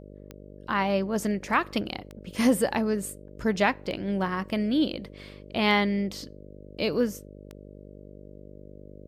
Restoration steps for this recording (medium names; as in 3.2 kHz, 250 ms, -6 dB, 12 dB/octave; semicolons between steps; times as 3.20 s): de-click; de-hum 49.8 Hz, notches 12